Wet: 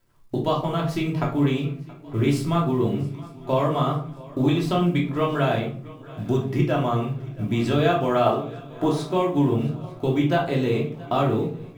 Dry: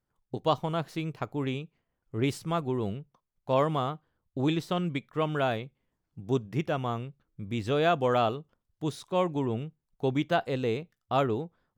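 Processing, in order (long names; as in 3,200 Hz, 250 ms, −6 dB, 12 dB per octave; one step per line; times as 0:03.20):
0:08.26–0:09.03: parametric band 800 Hz +13 dB 2.4 octaves
downward compressor 3 to 1, threshold −33 dBFS, peak gain reduction 14 dB
log-companded quantiser 8 bits
feedback echo with a long and a short gap by turns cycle 901 ms, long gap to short 3 to 1, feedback 46%, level −21 dB
rectangular room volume 420 cubic metres, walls furnished, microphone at 2.9 metres
level +7.5 dB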